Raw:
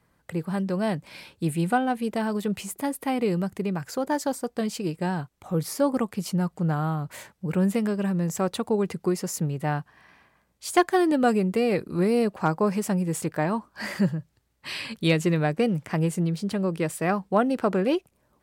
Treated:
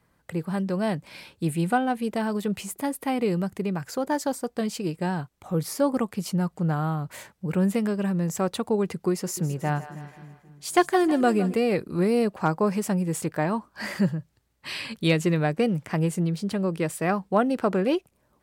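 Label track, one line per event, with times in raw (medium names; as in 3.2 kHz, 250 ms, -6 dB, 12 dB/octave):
9.100000	11.540000	two-band feedback delay split 420 Hz, lows 268 ms, highs 159 ms, level -14 dB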